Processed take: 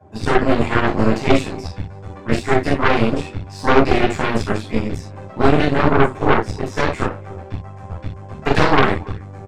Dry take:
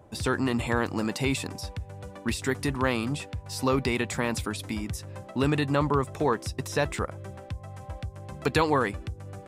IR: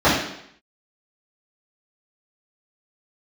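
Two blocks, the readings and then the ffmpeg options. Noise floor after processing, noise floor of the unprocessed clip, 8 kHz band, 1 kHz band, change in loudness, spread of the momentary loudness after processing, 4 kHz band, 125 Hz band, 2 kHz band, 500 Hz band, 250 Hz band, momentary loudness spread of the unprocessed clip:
-36 dBFS, -47 dBFS, -1.0 dB, +11.5 dB, +10.0 dB, 16 LU, +7.0 dB, +8.5 dB, +10.0 dB, +10.5 dB, +9.5 dB, 14 LU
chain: -filter_complex "[0:a]asplit=2[a][b];[b]adelay=280,highpass=300,lowpass=3.4k,asoftclip=type=hard:threshold=-20dB,volume=-20dB[c];[a][c]amix=inputs=2:normalize=0[d];[1:a]atrim=start_sample=2205,atrim=end_sample=6174,asetrate=57330,aresample=44100[e];[d][e]afir=irnorm=-1:irlink=0,aeval=exprs='5.31*(cos(1*acos(clip(val(0)/5.31,-1,1)))-cos(1*PI/2))+1.88*(cos(6*acos(clip(val(0)/5.31,-1,1)))-cos(6*PI/2))':c=same,volume=-17.5dB"

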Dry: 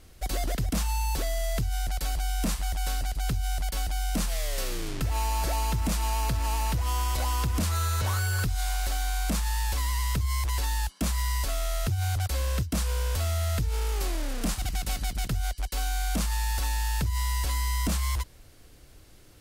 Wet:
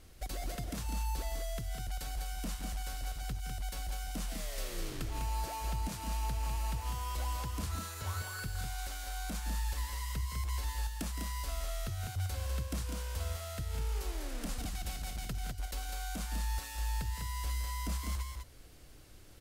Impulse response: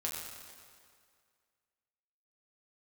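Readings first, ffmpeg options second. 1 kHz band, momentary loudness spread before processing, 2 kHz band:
-9.0 dB, 3 LU, -9.5 dB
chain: -af "acompressor=threshold=-32dB:ratio=6,aecho=1:1:166|200:0.299|0.562,volume=-4dB"

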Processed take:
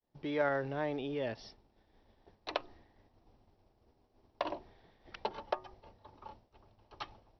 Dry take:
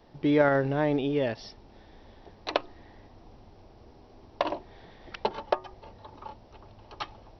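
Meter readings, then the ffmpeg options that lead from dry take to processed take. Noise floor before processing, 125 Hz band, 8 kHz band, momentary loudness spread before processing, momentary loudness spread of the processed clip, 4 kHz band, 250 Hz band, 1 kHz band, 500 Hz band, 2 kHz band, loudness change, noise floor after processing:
-55 dBFS, -12.5 dB, n/a, 22 LU, 21 LU, -7.5 dB, -12.5 dB, -8.0 dB, -9.0 dB, -7.5 dB, -9.5 dB, -73 dBFS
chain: -filter_complex "[0:a]agate=range=-33dB:threshold=-44dB:ratio=3:detection=peak,acrossover=split=460|2100[a][b][c];[a]alimiter=level_in=4.5dB:limit=-24dB:level=0:latency=1,volume=-4.5dB[d];[d][b][c]amix=inputs=3:normalize=0,volume=-7.5dB"

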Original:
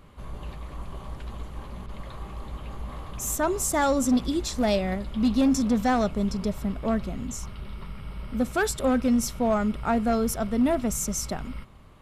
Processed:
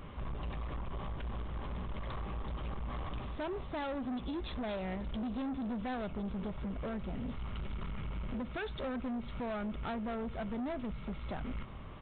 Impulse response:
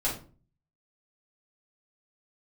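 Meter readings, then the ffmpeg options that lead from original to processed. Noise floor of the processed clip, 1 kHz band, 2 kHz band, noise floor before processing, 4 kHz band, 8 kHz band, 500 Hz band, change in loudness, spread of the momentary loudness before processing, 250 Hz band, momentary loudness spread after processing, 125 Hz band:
-44 dBFS, -12.5 dB, -11.5 dB, -41 dBFS, -12.0 dB, under -40 dB, -13.0 dB, -14.5 dB, 17 LU, -13.5 dB, 5 LU, -6.5 dB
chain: -af "acompressor=threshold=-35dB:ratio=5,aresample=8000,asoftclip=type=tanh:threshold=-39.5dB,aresample=44100,volume=5dB"

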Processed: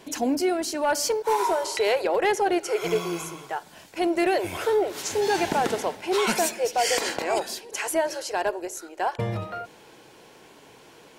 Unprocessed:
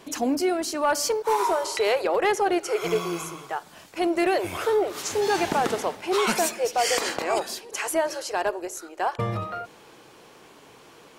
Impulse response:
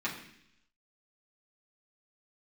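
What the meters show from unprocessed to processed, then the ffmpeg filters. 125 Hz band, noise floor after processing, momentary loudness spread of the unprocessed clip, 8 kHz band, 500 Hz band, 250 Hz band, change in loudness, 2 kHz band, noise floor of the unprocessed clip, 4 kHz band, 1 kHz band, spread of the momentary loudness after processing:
0.0 dB, -51 dBFS, 10 LU, 0.0 dB, 0.0 dB, 0.0 dB, 0.0 dB, 0.0 dB, -51 dBFS, 0.0 dB, -0.5 dB, 10 LU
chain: -af "bandreject=f=1.2k:w=6.6"

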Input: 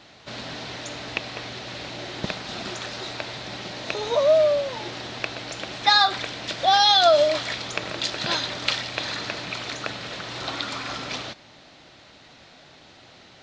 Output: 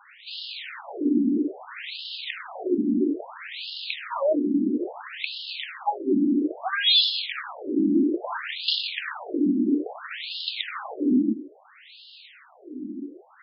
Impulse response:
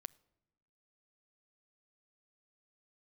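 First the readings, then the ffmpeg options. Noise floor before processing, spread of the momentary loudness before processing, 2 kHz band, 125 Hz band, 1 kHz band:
-50 dBFS, 17 LU, -4.5 dB, n/a, -9.5 dB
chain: -af "lowshelf=f=410:t=q:w=3:g=13,acontrast=81,aresample=11025,asoftclip=type=tanh:threshold=-12.5dB,aresample=44100,afftfilt=real='re*between(b*sr/1024,260*pow(3900/260,0.5+0.5*sin(2*PI*0.6*pts/sr))/1.41,260*pow(3900/260,0.5+0.5*sin(2*PI*0.6*pts/sr))*1.41)':imag='im*between(b*sr/1024,260*pow(3900/260,0.5+0.5*sin(2*PI*0.6*pts/sr))/1.41,260*pow(3900/260,0.5+0.5*sin(2*PI*0.6*pts/sr))*1.41)':win_size=1024:overlap=0.75"

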